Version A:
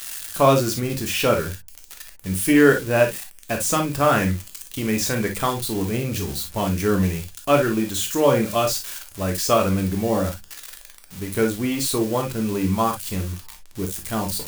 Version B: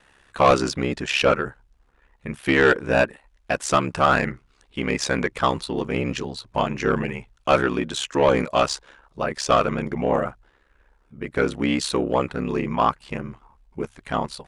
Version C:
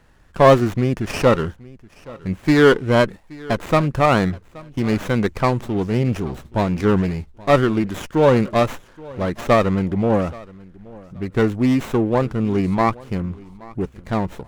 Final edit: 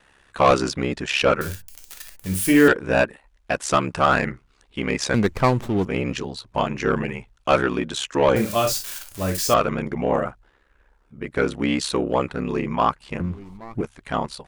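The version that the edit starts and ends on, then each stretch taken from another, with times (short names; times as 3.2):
B
1.41–2.68 from A
5.14–5.85 from C
8.36–9.54 from A
13.2–13.81 from C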